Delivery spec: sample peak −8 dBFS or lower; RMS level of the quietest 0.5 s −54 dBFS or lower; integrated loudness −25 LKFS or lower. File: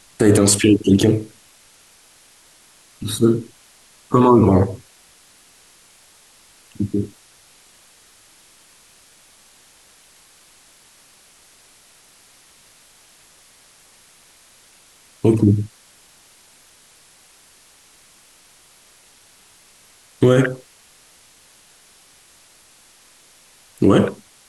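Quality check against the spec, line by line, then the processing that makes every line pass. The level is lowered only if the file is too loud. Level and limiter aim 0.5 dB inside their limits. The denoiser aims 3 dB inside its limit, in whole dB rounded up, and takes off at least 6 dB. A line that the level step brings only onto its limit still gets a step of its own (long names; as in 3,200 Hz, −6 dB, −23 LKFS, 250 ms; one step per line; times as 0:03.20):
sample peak −3.0 dBFS: out of spec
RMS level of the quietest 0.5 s −51 dBFS: out of spec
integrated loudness −17.0 LKFS: out of spec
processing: level −8.5 dB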